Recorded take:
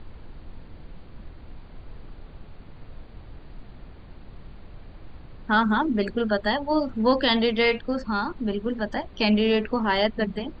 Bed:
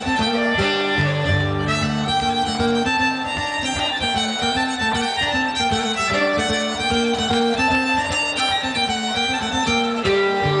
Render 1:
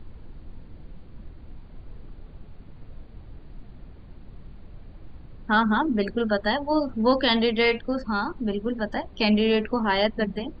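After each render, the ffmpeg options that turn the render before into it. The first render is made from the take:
-af "afftdn=nr=6:nf=-46"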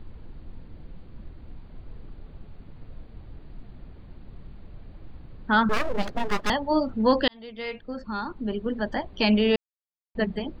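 -filter_complex "[0:a]asettb=1/sr,asplit=3[s0][s1][s2];[s0]atrim=end=5.694[s3];[s1]atrim=start=5.69:end=6.5,asetpts=PTS-STARTPTS,afade=t=in:d=0.004:c=qsin,afade=t=out:st=0.806:d=0.004:c=qsin,aeval=exprs='abs(val(0))':c=same[s4];[s2]atrim=start=6.496[s5];[s3][s4]acrossfade=d=0.004:c1=hsin:c2=qsin[s6];[s6][s5]acrossfade=d=0.004:c1=qsin:c2=hsin,asplit=4[s7][s8][s9][s10];[s7]atrim=end=7.28,asetpts=PTS-STARTPTS,afade=t=out:st=7.276:d=0.004:c=hsin[s11];[s8]atrim=start=7.28:end=9.56,asetpts=PTS-STARTPTS,afade=t=in:d=1.59,afade=t=out:st=2.276:d=0.004:c=hsin[s12];[s9]atrim=start=9.56:end=10.15,asetpts=PTS-STARTPTS,volume=0[s13];[s10]atrim=start=10.15,asetpts=PTS-STARTPTS,afade=t=in:d=0.004:c=hsin[s14];[s11][s12][s13][s14]concat=n=4:v=0:a=1"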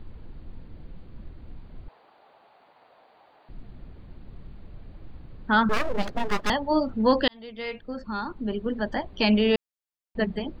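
-filter_complex "[0:a]asettb=1/sr,asplit=3[s0][s1][s2];[s0]atrim=end=1.884[s3];[s1]atrim=start=1.88:end=3.49,asetpts=PTS-STARTPTS,afade=t=in:d=0.004:c=qsin,afade=t=out:st=1.606:d=0.004:c=qsin,highpass=f=760:t=q:w=2.6[s4];[s2]atrim=start=3.486[s5];[s3][s4]acrossfade=d=0.004:c1=hsin:c2=qsin[s6];[s6][s5]acrossfade=d=0.004:c1=qsin:c2=hsin"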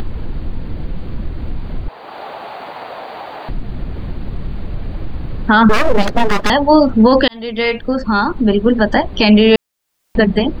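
-filter_complex "[0:a]asplit=2[s0][s1];[s1]acompressor=mode=upward:threshold=0.0501:ratio=2.5,volume=1.06[s2];[s0][s2]amix=inputs=2:normalize=0,alimiter=level_in=3.16:limit=0.891:release=50:level=0:latency=1"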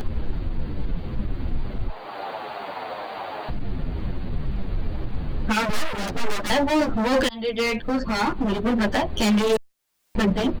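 -filter_complex "[0:a]volume=5.96,asoftclip=hard,volume=0.168,asplit=2[s0][s1];[s1]adelay=8.9,afreqshift=-2.1[s2];[s0][s2]amix=inputs=2:normalize=1"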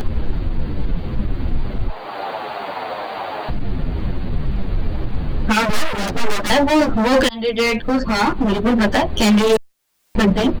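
-af "volume=2"

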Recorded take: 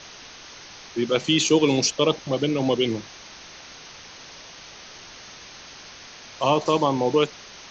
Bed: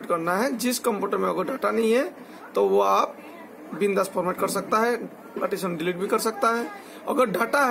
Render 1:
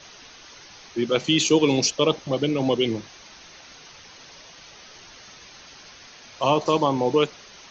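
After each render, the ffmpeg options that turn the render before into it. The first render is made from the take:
-af "afftdn=nr=6:nf=-44"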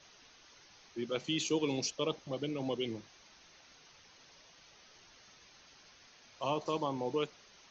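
-af "volume=0.2"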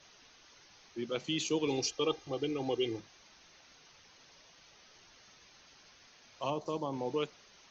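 -filter_complex "[0:a]asettb=1/sr,asplit=3[s0][s1][s2];[s0]atrim=end=1.674[s3];[s1]atrim=start=1.67:end=3,asetpts=PTS-STARTPTS,afade=t=in:d=0.004:c=qsin,afade=t=out:st=1.326:d=0.004:c=qsin,aecho=1:1:2.5:0.83,atrim=end_sample=58653[s4];[s2]atrim=start=2.996[s5];[s3][s4]acrossfade=d=0.004:c1=hsin:c2=qsin[s6];[s6][s5]acrossfade=d=0.004:c1=qsin:c2=hsin,asettb=1/sr,asplit=3[s7][s8][s9];[s7]atrim=end=6.504[s10];[s8]atrim=start=6.5:end=6.93,asetpts=PTS-STARTPTS,afade=t=in:d=0.004:c=qsin,afade=t=out:st=0.426:d=0.004:c=qsin,equalizer=f=2300:t=o:w=2.2:g=-8[s11];[s9]atrim=start=6.926[s12];[s10][s11]acrossfade=d=0.004:c1=hsin:c2=qsin[s13];[s13][s12]acrossfade=d=0.004:c1=qsin:c2=hsin"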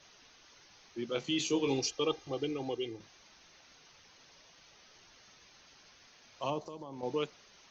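-filter_complex "[0:a]asettb=1/sr,asplit=3[s0][s1][s2];[s0]atrim=end=1.134[s3];[s1]atrim=start=1.13:end=1.79,asetpts=PTS-STARTPTS,afade=t=in:d=0.004:c=qsin,afade=t=out:st=0.656:d=0.004:c=qsin,asplit=2[s4][s5];[s5]adelay=22,volume=0.473[s6];[s4][s6]amix=inputs=2:normalize=0,atrim=end_sample=29106[s7];[s2]atrim=start=1.786[s8];[s3][s7]acrossfade=d=0.004:c1=hsin:c2=qsin[s9];[s9][s8]acrossfade=d=0.004:c1=qsin:c2=hsin,asettb=1/sr,asplit=3[s10][s11][s12];[s10]atrim=end=6.594[s13];[s11]atrim=start=6.59:end=7.03,asetpts=PTS-STARTPTS,afade=t=in:d=0.004:c=qsin,afade=t=out:st=0.436:d=0.004:c=qsin,acompressor=threshold=0.00891:ratio=6:attack=3.2:release=140:knee=1:detection=peak[s14];[s12]atrim=start=7.026[s15];[s13][s14]acrossfade=d=0.004:c1=hsin:c2=qsin[s16];[s16][s15]acrossfade=d=0.004:c1=qsin:c2=hsin,asplit=2[s17][s18];[s17]atrim=end=3,asetpts=PTS-STARTPTS,afade=t=out:st=2.4:d=0.6:silence=0.421697[s19];[s18]atrim=start=3,asetpts=PTS-STARTPTS,afade=t=in:d=0.004:c=hsin:silence=0.421697[s20];[s19][s20]concat=n=2:v=0:a=1"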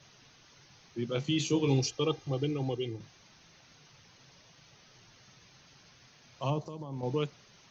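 -af "equalizer=f=130:w=1.2:g=14.5"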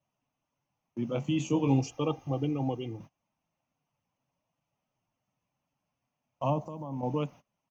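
-af "agate=range=0.0631:threshold=0.00447:ratio=16:detection=peak,firequalizer=gain_entry='entry(120,0);entry(270,6);entry(390,-6);entry(590,6);entry(990,5);entry(1600,-9);entry(2700,-2);entry(4000,-18);entry(6700,-4);entry(11000,8)':delay=0.05:min_phase=1"

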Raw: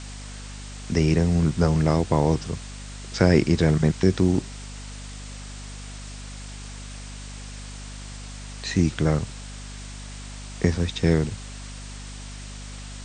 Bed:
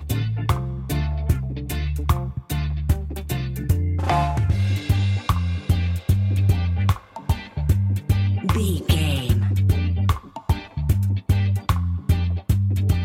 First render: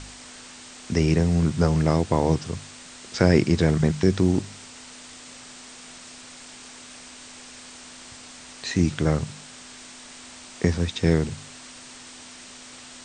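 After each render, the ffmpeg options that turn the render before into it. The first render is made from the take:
-af "bandreject=f=50:t=h:w=4,bandreject=f=100:t=h:w=4,bandreject=f=150:t=h:w=4,bandreject=f=200:t=h:w=4"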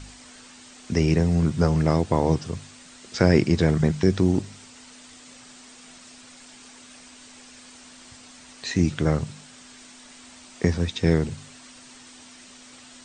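-af "afftdn=nr=6:nf=-44"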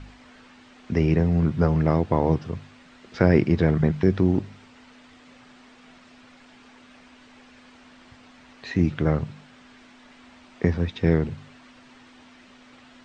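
-af "lowpass=2600"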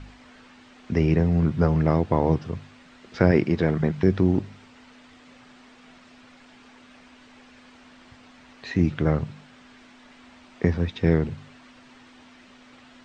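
-filter_complex "[0:a]asettb=1/sr,asplit=3[s0][s1][s2];[s0]atrim=end=3.314[s3];[s1]atrim=start=3.31:end=3.98,asetpts=PTS-STARTPTS,afade=t=in:d=0.004:c=qsin,afade=t=out:st=0.666:d=0.004:c=qsin,lowshelf=f=99:g=-11[s4];[s2]atrim=start=3.976[s5];[s3][s4]acrossfade=d=0.004:c1=hsin:c2=qsin[s6];[s6][s5]acrossfade=d=0.004:c1=qsin:c2=hsin"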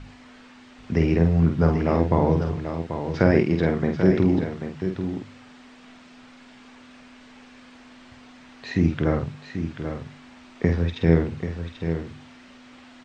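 -filter_complex "[0:a]asplit=2[s0][s1];[s1]adelay=48,volume=0.531[s2];[s0][s2]amix=inputs=2:normalize=0,aecho=1:1:787:0.376"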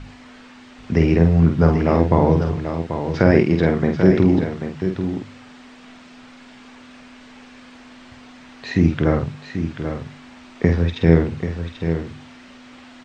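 -af "volume=1.68,alimiter=limit=0.891:level=0:latency=1"

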